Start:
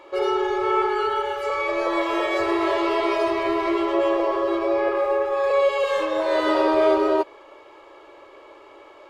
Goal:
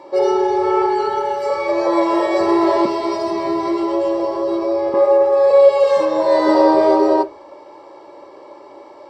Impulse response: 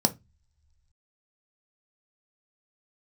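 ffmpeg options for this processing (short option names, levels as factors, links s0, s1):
-filter_complex "[0:a]asettb=1/sr,asplit=3[s0][s1][s2];[s0]atrim=end=2.854[s3];[s1]atrim=start=2.85:end=4.94,asetpts=PTS-STARTPTS,afade=t=in:d=0.004:c=qsin,afade=t=out:st=2.086:d=0.004:c=qsin,acrossover=split=240|3000[s4][s5][s6];[s5]acompressor=threshold=0.0501:ratio=6[s7];[s4][s7][s6]amix=inputs=3:normalize=0[s8];[s2]atrim=start=4.936[s9];[s3][s8]acrossfade=d=0.004:c1=hsin:c2=qsin[s10];[s10][s9]acrossfade=d=0.004:c1=qsin:c2=hsin[s11];[1:a]atrim=start_sample=2205,afade=t=out:st=0.42:d=0.01,atrim=end_sample=18963[s12];[s11][s12]afir=irnorm=-1:irlink=0,volume=0.447"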